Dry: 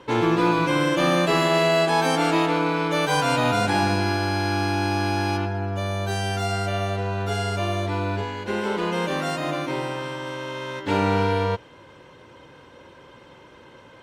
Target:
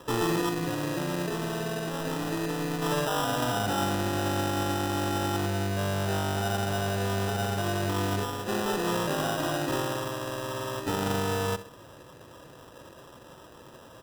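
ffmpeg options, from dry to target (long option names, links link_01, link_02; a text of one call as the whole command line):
ffmpeg -i in.wav -filter_complex "[0:a]alimiter=limit=-18.5dB:level=0:latency=1:release=20,asettb=1/sr,asplit=3[link_01][link_02][link_03];[link_01]atrim=end=0.494[link_04];[link_02]atrim=start=0.49:end=2.82,asetpts=PTS-STARTPTS,afade=type=in:duration=0.004:curve=qsin,afade=type=out:start_time=2.326:duration=0.004:curve=qsin,equalizer=frequency=880:width=1.1:gain=-11[link_05];[link_03]atrim=start=2.816[link_06];[link_04][link_05]acrossfade=duration=0.004:curve1=hsin:curve2=qsin[link_07];[link_07][link_06]acrossfade=duration=0.004:curve1=qsin:curve2=hsin,asplit=2[link_08][link_09];[link_09]adelay=66,lowpass=frequency=2000:poles=1,volume=-14dB,asplit=2[link_10][link_11];[link_11]adelay=66,lowpass=frequency=2000:poles=1,volume=0.36,asplit=2[link_12][link_13];[link_13]adelay=66,lowpass=frequency=2000:poles=1,volume=0.36[link_14];[link_08][link_10][link_12][link_14]amix=inputs=4:normalize=0,acrusher=samples=20:mix=1:aa=0.000001,volume=-1.5dB" out.wav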